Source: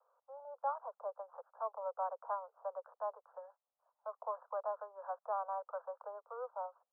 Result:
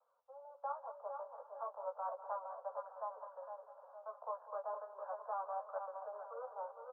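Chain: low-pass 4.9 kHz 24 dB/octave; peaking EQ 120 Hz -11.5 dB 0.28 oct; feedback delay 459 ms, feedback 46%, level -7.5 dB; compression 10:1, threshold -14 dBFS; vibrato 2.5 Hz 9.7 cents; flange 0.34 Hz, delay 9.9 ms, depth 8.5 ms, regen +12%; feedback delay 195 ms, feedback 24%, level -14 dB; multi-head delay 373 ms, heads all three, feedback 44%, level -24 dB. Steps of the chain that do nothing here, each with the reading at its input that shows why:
low-pass 4.9 kHz: input has nothing above 1.5 kHz; peaking EQ 120 Hz: input has nothing below 400 Hz; compression, threshold -14 dBFS: peak at its input -26.0 dBFS

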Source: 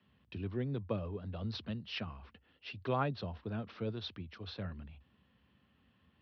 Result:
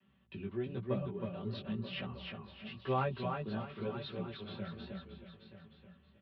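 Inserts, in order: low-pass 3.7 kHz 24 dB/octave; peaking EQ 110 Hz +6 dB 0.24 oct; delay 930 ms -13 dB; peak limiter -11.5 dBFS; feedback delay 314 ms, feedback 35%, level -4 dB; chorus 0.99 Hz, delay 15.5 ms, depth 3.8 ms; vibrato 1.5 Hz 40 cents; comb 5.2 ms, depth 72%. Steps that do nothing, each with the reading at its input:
peak limiter -11.5 dBFS: peak at its input -20.5 dBFS

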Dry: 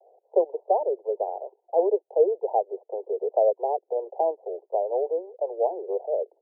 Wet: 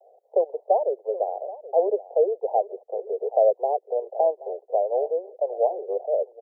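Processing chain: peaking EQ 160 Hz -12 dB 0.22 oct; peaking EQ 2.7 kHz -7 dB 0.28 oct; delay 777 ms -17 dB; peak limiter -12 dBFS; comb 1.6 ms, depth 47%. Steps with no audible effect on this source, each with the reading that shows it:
peaking EQ 160 Hz: input has nothing below 320 Hz; peaking EQ 2.7 kHz: input has nothing above 1 kHz

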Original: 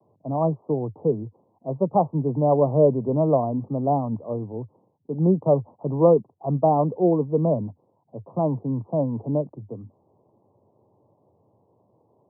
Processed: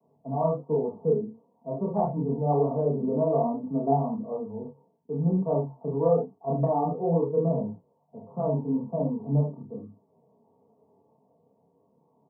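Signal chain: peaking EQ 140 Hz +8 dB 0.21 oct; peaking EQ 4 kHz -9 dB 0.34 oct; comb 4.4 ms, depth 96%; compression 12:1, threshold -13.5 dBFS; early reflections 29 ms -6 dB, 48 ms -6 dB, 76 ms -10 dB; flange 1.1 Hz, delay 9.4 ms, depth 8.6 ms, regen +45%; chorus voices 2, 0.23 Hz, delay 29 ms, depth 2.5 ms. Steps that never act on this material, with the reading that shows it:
peaking EQ 4 kHz: input has nothing above 1.1 kHz

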